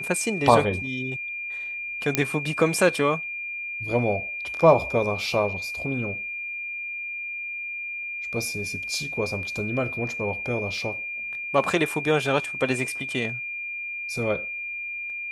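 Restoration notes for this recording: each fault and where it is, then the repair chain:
tone 2400 Hz -30 dBFS
2.15 pop -3 dBFS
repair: de-click; notch 2400 Hz, Q 30

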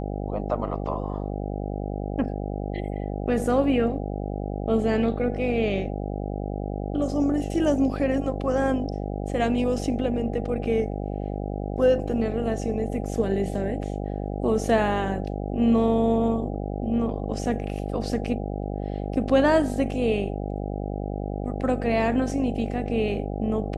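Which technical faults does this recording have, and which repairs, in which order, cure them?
buzz 50 Hz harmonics 16 -30 dBFS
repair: de-hum 50 Hz, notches 16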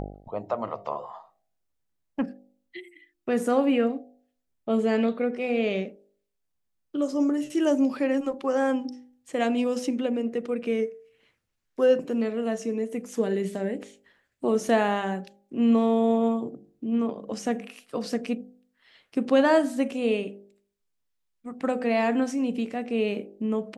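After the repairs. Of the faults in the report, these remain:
none

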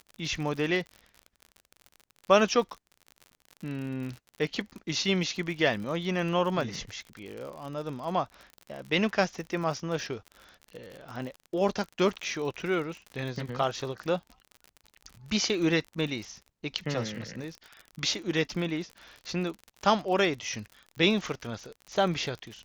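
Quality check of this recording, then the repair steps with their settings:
crackle 52/s -36 dBFS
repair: de-click

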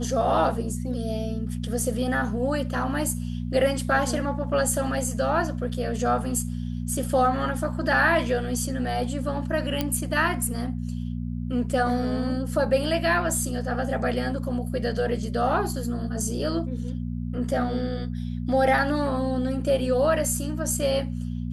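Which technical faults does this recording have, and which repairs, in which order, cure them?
hum 60 Hz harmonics 4 -30 dBFS
9.81 pop -10 dBFS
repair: de-click; de-hum 60 Hz, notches 4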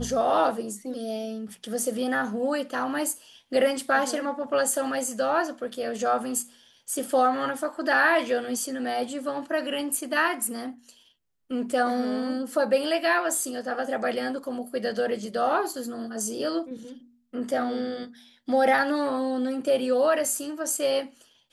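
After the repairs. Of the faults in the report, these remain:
none

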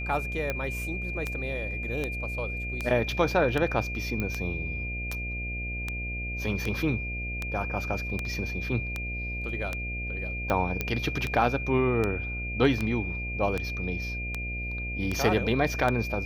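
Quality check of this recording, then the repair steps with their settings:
buzz 60 Hz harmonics 12 -35 dBFS
tick 78 rpm -15 dBFS
tone 2400 Hz -34 dBFS
4.2 pop -17 dBFS
10.81 pop -13 dBFS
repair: de-click; de-hum 60 Hz, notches 12; notch 2400 Hz, Q 30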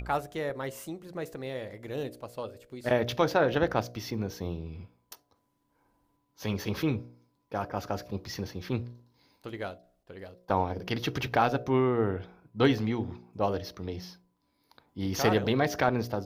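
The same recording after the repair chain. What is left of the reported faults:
none

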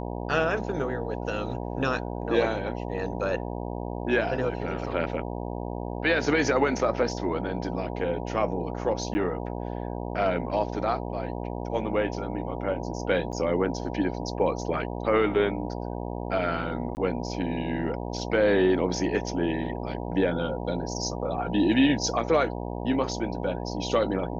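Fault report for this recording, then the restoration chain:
buzz 60 Hz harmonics 16 -33 dBFS
9.14–9.15 gap 10 ms
13.32–13.33 gap 8 ms
16.95–16.97 gap 19 ms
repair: de-hum 60 Hz, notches 16; interpolate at 9.14, 10 ms; interpolate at 13.32, 8 ms; interpolate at 16.95, 19 ms

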